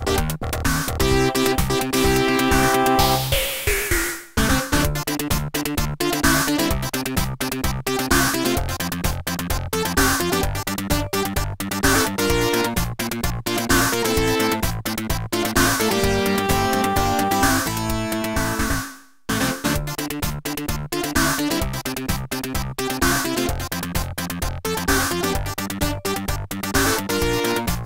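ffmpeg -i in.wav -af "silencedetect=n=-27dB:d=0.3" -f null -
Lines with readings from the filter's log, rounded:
silence_start: 18.89
silence_end: 19.29 | silence_duration: 0.40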